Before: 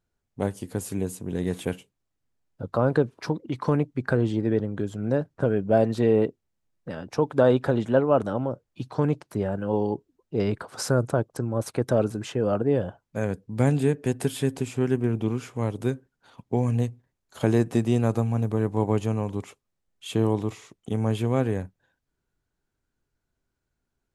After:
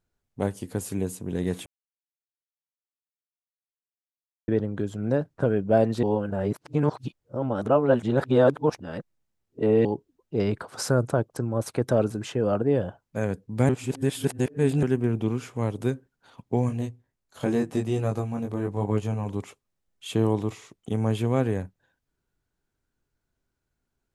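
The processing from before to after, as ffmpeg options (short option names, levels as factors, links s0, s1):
-filter_complex "[0:a]asplit=3[s0][s1][s2];[s0]afade=t=out:st=16.68:d=0.02[s3];[s1]flanger=delay=19:depth=2.7:speed=1,afade=t=in:st=16.68:d=0.02,afade=t=out:st=19.25:d=0.02[s4];[s2]afade=t=in:st=19.25:d=0.02[s5];[s3][s4][s5]amix=inputs=3:normalize=0,asplit=7[s6][s7][s8][s9][s10][s11][s12];[s6]atrim=end=1.66,asetpts=PTS-STARTPTS,afade=t=out:st=1.656:d=0.004:c=hsin[s13];[s7]atrim=start=1.66:end=4.48,asetpts=PTS-STARTPTS,volume=0[s14];[s8]atrim=start=4.48:end=6.032,asetpts=PTS-STARTPTS,afade=t=in:d=0.004:c=hsin[s15];[s9]atrim=start=6.028:end=9.852,asetpts=PTS-STARTPTS,areverse[s16];[s10]atrim=start=9.848:end=13.692[s17];[s11]atrim=start=13.688:end=14.832,asetpts=PTS-STARTPTS,areverse[s18];[s12]atrim=start=14.828[s19];[s13][s14][s15]concat=n=3:v=0:a=1[s20];[s20][s16]acrossfade=d=0.004:c1=hsin:c2=hsin[s21];[s21][s17]acrossfade=d=0.004:c1=hsin:c2=hsin[s22];[s22][s18]acrossfade=d=0.004:c1=hsin:c2=hsin[s23];[s23][s19]acrossfade=d=0.004:c1=hsin:c2=hsin"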